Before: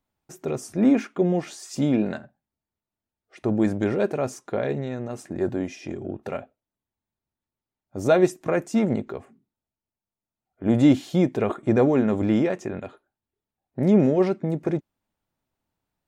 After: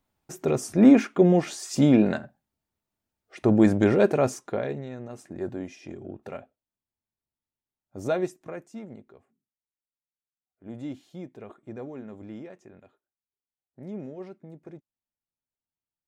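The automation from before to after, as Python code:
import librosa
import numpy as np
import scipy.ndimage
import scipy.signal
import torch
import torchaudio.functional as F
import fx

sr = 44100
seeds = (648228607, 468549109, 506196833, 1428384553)

y = fx.gain(x, sr, db=fx.line((4.26, 3.5), (4.81, -7.0), (8.07, -7.0), (8.86, -19.5)))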